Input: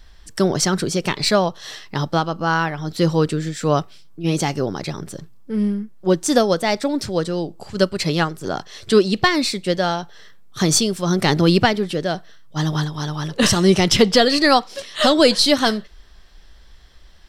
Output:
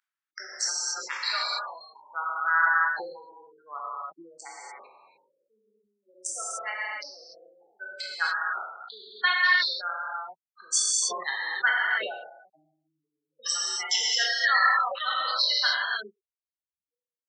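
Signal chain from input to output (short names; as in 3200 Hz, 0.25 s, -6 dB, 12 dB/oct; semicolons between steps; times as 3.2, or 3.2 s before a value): Wiener smoothing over 25 samples; spectral gate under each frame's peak -15 dB strong; high shelf 2200 Hz +6.5 dB; non-linear reverb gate 0.32 s flat, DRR -6 dB; dynamic EQ 4700 Hz, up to -7 dB, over -32 dBFS, Q 6.3; ladder high-pass 1300 Hz, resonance 60%; sustainer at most 64 dB/s; gain -1.5 dB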